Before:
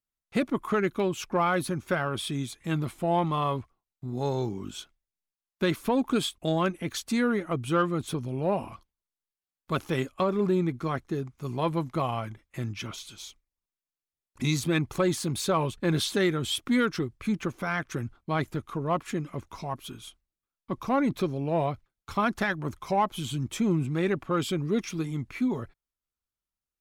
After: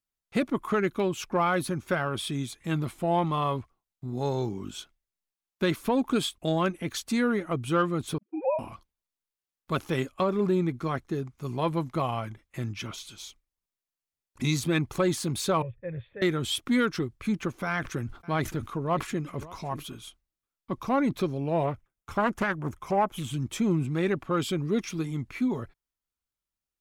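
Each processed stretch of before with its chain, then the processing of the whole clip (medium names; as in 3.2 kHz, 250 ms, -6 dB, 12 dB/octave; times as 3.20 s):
8.18–8.59 s: formants replaced by sine waves + high-pass 200 Hz 6 dB/octave + gate -33 dBFS, range -44 dB
15.62–16.22 s: cascade formant filter e + resonant low shelf 170 Hz +12.5 dB, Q 3
17.66–20.04 s: delay 572 ms -21 dB + decay stretcher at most 150 dB/s
21.63–23.34 s: peaking EQ 4.2 kHz -11.5 dB 0.48 oct + loudspeaker Doppler distortion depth 0.37 ms
whole clip: none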